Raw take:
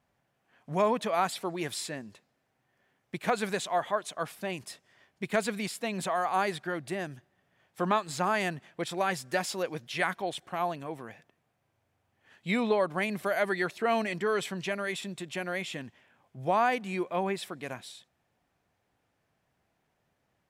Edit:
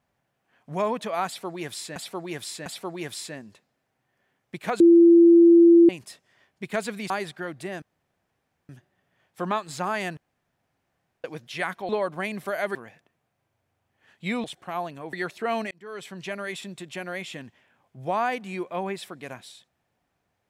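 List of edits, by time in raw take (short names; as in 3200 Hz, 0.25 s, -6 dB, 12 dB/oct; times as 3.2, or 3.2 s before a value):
1.26–1.96 loop, 3 plays
3.4–4.49 bleep 339 Hz -10 dBFS
5.7–6.37 cut
7.09 insert room tone 0.87 s
8.57–9.64 room tone
10.29–10.98 swap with 12.67–13.53
14.11–14.76 fade in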